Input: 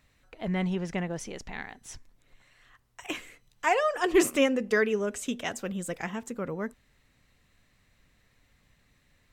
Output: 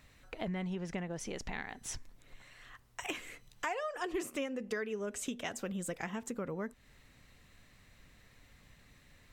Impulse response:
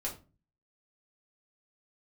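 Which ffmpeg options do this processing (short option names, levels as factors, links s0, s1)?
-af "acompressor=threshold=0.00891:ratio=5,volume=1.68"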